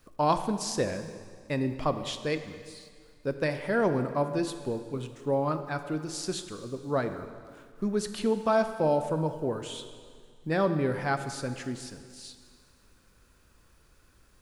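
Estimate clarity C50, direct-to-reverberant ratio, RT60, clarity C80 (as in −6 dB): 10.0 dB, 8.5 dB, 1.9 s, 10.5 dB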